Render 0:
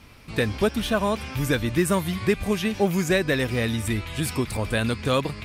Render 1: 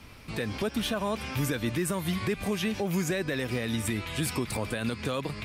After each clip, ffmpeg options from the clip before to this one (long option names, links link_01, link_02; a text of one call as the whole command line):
ffmpeg -i in.wav -filter_complex "[0:a]acrossover=split=110|1700[link_01][link_02][link_03];[link_01]acompressor=threshold=-43dB:ratio=6[link_04];[link_04][link_02][link_03]amix=inputs=3:normalize=0,alimiter=limit=-19.5dB:level=0:latency=1:release=128" out.wav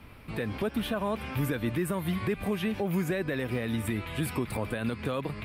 ffmpeg -i in.wav -af "equalizer=frequency=6100:width=1:gain=-14.5" out.wav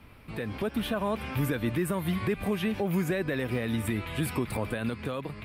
ffmpeg -i in.wav -af "dynaudnorm=framelen=140:gausssize=9:maxgain=3.5dB,volume=-2.5dB" out.wav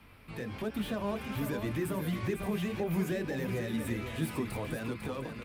ffmpeg -i in.wav -filter_complex "[0:a]acrossover=split=760[link_01][link_02];[link_01]flanger=delay=18:depth=7:speed=1.4[link_03];[link_02]asoftclip=type=tanh:threshold=-39.5dB[link_04];[link_03][link_04]amix=inputs=2:normalize=0,aecho=1:1:499:0.422,volume=-1.5dB" out.wav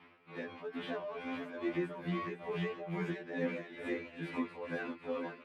ffmpeg -i in.wav -af "highpass=280,lowpass=2700,tremolo=f=2.3:d=0.69,afftfilt=real='re*2*eq(mod(b,4),0)':imag='im*2*eq(mod(b,4),0)':win_size=2048:overlap=0.75,volume=4.5dB" out.wav